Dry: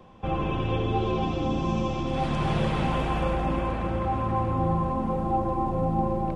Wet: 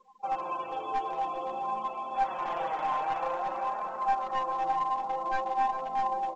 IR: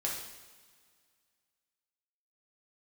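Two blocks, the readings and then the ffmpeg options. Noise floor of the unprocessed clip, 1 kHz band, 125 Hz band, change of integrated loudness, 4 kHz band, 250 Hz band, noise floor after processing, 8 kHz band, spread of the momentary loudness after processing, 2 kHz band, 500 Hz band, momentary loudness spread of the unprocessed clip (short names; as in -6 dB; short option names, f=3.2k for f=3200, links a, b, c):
-30 dBFS, +1.0 dB, under -30 dB, -4.5 dB, -9.5 dB, -20.5 dB, -39 dBFS, n/a, 5 LU, -3.0 dB, -8.0 dB, 2 LU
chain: -af "lowpass=f=1.3k:p=1,aeval=exprs='0.2*(cos(1*acos(clip(val(0)/0.2,-1,1)))-cos(1*PI/2))+0.0126*(cos(3*acos(clip(val(0)/0.2,-1,1)))-cos(3*PI/2))+0.00355*(cos(4*acos(clip(val(0)/0.2,-1,1)))-cos(4*PI/2))':c=same,afftfilt=real='re*gte(hypot(re,im),0.00708)':imag='im*gte(hypot(re,im),0.00708)':win_size=1024:overlap=0.75,highpass=f=820:t=q:w=2,aeval=exprs='clip(val(0),-1,0.0531)':c=same,flanger=delay=4.5:depth=2.2:regen=17:speed=0.51:shape=triangular,aecho=1:1:399|798|1197|1596|1995:0.224|0.114|0.0582|0.0297|0.0151,volume=2dB" -ar 16000 -c:a pcm_mulaw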